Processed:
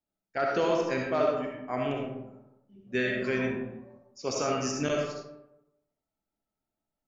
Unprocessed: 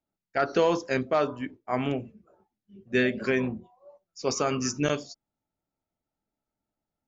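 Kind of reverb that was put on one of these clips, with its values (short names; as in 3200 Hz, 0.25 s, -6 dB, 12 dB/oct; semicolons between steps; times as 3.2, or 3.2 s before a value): digital reverb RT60 0.91 s, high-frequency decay 0.5×, pre-delay 25 ms, DRR -0.5 dB; gain -5 dB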